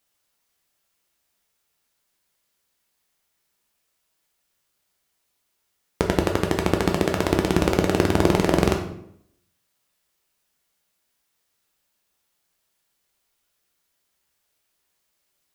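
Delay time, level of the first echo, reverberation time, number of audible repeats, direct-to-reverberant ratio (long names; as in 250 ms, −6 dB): no echo audible, no echo audible, 0.75 s, no echo audible, 2.0 dB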